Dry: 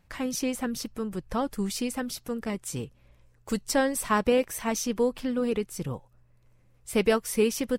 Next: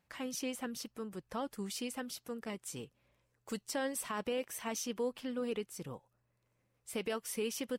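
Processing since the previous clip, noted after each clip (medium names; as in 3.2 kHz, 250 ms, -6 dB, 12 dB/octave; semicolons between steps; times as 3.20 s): high-pass 240 Hz 6 dB/octave; dynamic bell 3 kHz, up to +5 dB, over -53 dBFS, Q 4.8; peak limiter -19 dBFS, peak gain reduction 8.5 dB; trim -8 dB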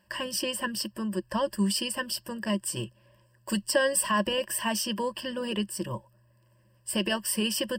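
rippled EQ curve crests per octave 1.3, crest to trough 18 dB; trim +8 dB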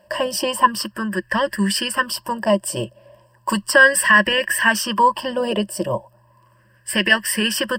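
sweeping bell 0.35 Hz 620–1900 Hz +17 dB; trim +6 dB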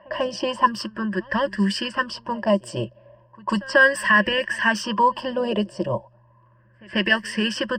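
FFT filter 110 Hz 0 dB, 6.4 kHz -6 dB, 10 kHz -20 dB; pre-echo 142 ms -23.5 dB; level-controlled noise filter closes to 1.8 kHz, open at -18 dBFS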